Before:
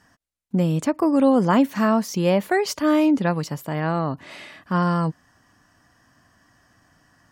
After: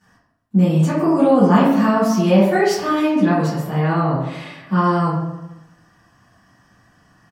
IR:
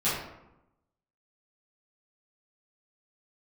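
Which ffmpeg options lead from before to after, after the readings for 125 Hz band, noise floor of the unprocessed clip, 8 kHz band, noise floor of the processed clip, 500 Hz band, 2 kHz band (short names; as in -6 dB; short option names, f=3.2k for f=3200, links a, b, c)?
+6.5 dB, -62 dBFS, +1.0 dB, -58 dBFS, +4.5 dB, +3.5 dB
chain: -filter_complex "[0:a]aecho=1:1:135|270|405|540:0.0841|0.0421|0.021|0.0105[a];[1:a]atrim=start_sample=2205[b];[a][b]afir=irnorm=-1:irlink=0,volume=-7dB"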